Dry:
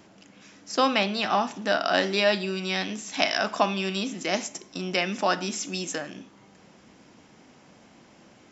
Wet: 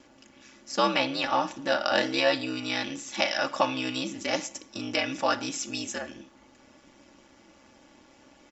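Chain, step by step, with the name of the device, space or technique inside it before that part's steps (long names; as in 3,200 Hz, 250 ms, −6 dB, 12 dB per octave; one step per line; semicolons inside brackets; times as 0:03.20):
low-shelf EQ 190 Hz −4 dB
ring-modulated robot voice (ring modulation 66 Hz; comb filter 3.5 ms, depth 65%)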